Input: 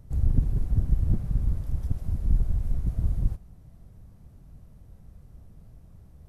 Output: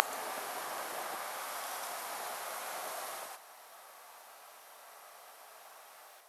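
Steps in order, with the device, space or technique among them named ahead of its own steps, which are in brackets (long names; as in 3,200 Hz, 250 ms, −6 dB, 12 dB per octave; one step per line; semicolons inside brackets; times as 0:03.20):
ghost voice (reversed playback; convolution reverb RT60 2.1 s, pre-delay 77 ms, DRR −5 dB; reversed playback; high-pass filter 770 Hz 24 dB per octave)
level +14 dB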